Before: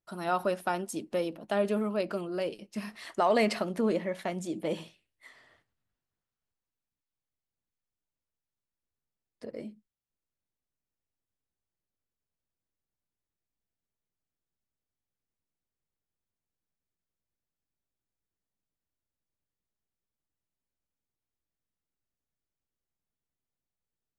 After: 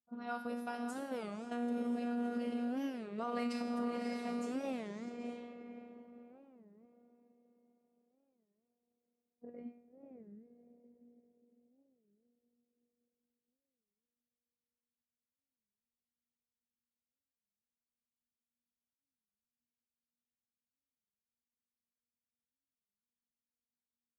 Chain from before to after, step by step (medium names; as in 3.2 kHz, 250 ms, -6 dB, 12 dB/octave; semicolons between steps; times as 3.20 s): bass shelf 250 Hz +6 dB; level-controlled noise filter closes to 440 Hz, open at -29 dBFS; peaking EQ 110 Hz +7.5 dB 1 oct; feedback comb 200 Hz, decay 0.84 s, harmonics all, mix 90%; echo that smears into a reverb 594 ms, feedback 42%, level -4.5 dB; peak limiter -34 dBFS, peak gain reduction 9.5 dB; on a send at -19 dB: reverberation RT60 5.3 s, pre-delay 108 ms; on the sum: level-controlled noise filter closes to 860 Hz, open at -41 dBFS; robot voice 240 Hz; high-pass 63 Hz; warped record 33 1/3 rpm, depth 250 cents; trim +6.5 dB